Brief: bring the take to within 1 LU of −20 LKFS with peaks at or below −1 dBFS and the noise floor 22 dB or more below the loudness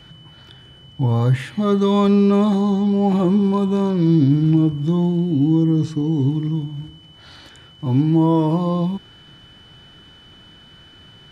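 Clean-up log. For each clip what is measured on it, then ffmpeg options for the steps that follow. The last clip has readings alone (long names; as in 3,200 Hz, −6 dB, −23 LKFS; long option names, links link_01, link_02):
interfering tone 3,000 Hz; level of the tone −46 dBFS; integrated loudness −18.0 LKFS; sample peak −6.0 dBFS; target loudness −20.0 LKFS
→ -af "bandreject=frequency=3000:width=30"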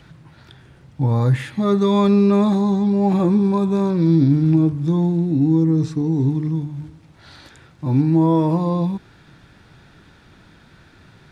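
interfering tone none found; integrated loudness −18.0 LKFS; sample peak −6.0 dBFS; target loudness −20.0 LKFS
→ -af "volume=-2dB"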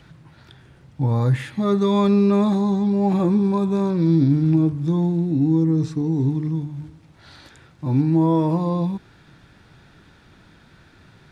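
integrated loudness −20.0 LKFS; sample peak −8.0 dBFS; background noise floor −52 dBFS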